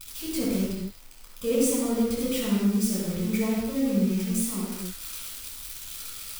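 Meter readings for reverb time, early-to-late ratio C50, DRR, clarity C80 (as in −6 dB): non-exponential decay, −2.0 dB, −6.0 dB, 1.0 dB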